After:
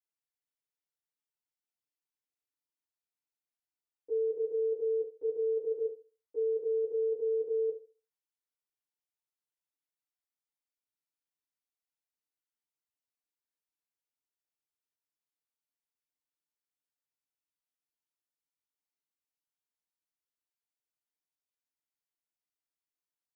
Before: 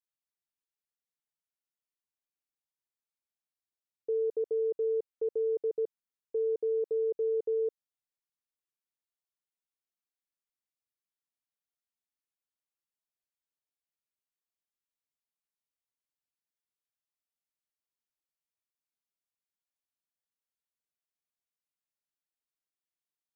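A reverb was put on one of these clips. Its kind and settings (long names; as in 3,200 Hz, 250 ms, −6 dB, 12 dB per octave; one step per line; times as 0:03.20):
feedback delay network reverb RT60 0.36 s, low-frequency decay 0.75×, high-frequency decay 0.9×, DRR −9 dB
level −14 dB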